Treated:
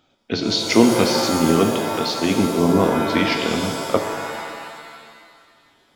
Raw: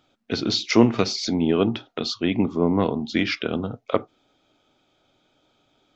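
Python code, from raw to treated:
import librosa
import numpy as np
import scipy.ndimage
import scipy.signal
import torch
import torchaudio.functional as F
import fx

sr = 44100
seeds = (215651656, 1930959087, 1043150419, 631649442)

y = fx.hum_notches(x, sr, base_hz=60, count=2)
y = fx.rev_shimmer(y, sr, seeds[0], rt60_s=1.8, semitones=7, shimmer_db=-2, drr_db=4.5)
y = F.gain(torch.from_numpy(y), 2.0).numpy()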